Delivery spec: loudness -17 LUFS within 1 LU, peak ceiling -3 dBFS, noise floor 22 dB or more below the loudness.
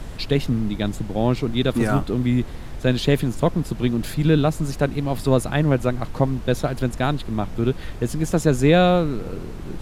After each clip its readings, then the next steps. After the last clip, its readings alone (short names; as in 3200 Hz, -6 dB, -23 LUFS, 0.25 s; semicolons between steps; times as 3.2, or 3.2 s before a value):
noise floor -33 dBFS; noise floor target -44 dBFS; loudness -21.5 LUFS; peak -4.5 dBFS; loudness target -17.0 LUFS
-> noise print and reduce 11 dB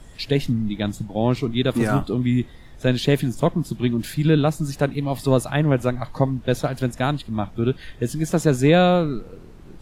noise floor -43 dBFS; noise floor target -44 dBFS
-> noise print and reduce 6 dB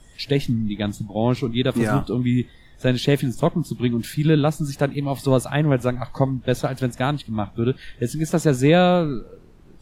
noise floor -48 dBFS; loudness -22.0 LUFS; peak -4.5 dBFS; loudness target -17.0 LUFS
-> gain +5 dB; limiter -3 dBFS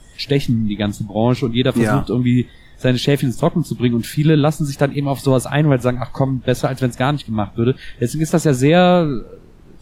loudness -17.5 LUFS; peak -3.0 dBFS; noise floor -43 dBFS